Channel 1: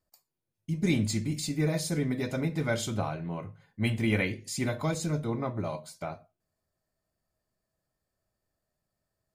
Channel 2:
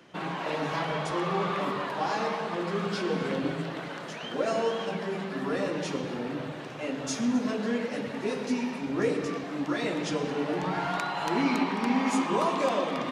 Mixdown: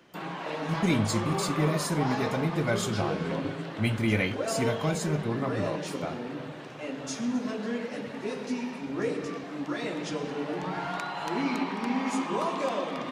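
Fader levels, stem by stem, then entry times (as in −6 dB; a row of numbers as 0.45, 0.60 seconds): +1.0, −3.0 decibels; 0.00, 0.00 seconds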